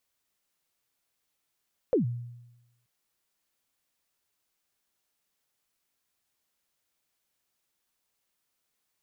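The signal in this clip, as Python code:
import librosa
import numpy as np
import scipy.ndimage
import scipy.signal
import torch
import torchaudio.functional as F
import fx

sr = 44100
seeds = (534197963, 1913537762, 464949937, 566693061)

y = fx.drum_kick(sr, seeds[0], length_s=0.93, level_db=-18.5, start_hz=560.0, end_hz=120.0, sweep_ms=122.0, decay_s=0.98, click=False)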